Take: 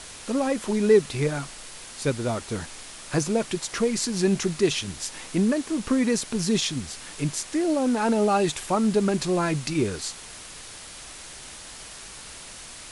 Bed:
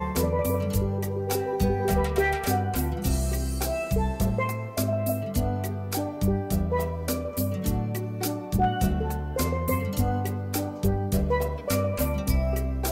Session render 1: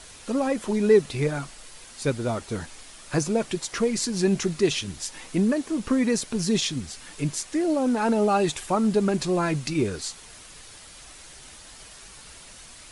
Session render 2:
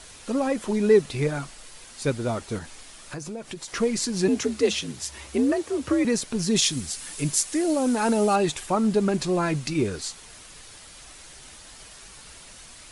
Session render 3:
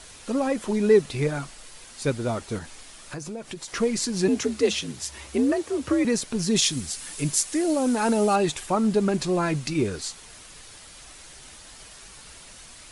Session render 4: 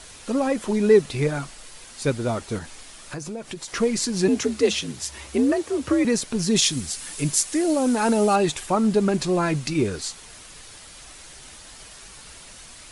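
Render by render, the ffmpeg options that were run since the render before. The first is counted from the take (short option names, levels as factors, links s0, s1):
-af "afftdn=nr=6:nf=-42"
-filter_complex "[0:a]asettb=1/sr,asplit=3[s0][s1][s2];[s0]atrim=end=2.584[s3];[s1]atrim=start=2.58:end=3.68,asetpts=PTS-STARTPTS,afade=t=in:d=0.004:c=qsin,afade=t=out:st=1.096:d=0.004:c=qsin,acompressor=threshold=0.0224:ratio=4:attack=3.2:release=140:knee=1:detection=peak[s4];[s2]atrim=start=3.676[s5];[s3][s4]acrossfade=d=0.004:c1=hsin:c2=qsin[s6];[s6][s5]acrossfade=d=0.004:c1=qsin:c2=hsin,asettb=1/sr,asplit=3[s7][s8][s9];[s7]atrim=end=4.284[s10];[s8]atrim=start=4.28:end=6.05,asetpts=PTS-STARTPTS,afade=t=in:d=0.004:c=qsin,afade=t=out:st=1.766:d=0.004:c=qsin,afreqshift=61[s11];[s9]atrim=start=6.046[s12];[s10][s11]acrossfade=d=0.004:c1=hsin:c2=qsin[s13];[s13][s12]acrossfade=d=0.004:c1=qsin:c2=hsin,asettb=1/sr,asplit=3[s14][s15][s16];[s14]atrim=end=6.564[s17];[s15]atrim=start=6.56:end=8.36,asetpts=PTS-STARTPTS,afade=t=in:d=0.004:c=qsin,afade=t=out:st=1.796:d=0.004:c=qsin,aemphasis=mode=production:type=50kf[s18];[s16]atrim=start=8.356[s19];[s17][s18]acrossfade=d=0.004:c1=hsin:c2=qsin[s20];[s20][s19]acrossfade=d=0.004:c1=qsin:c2=hsin"
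-af anull
-af "volume=1.26"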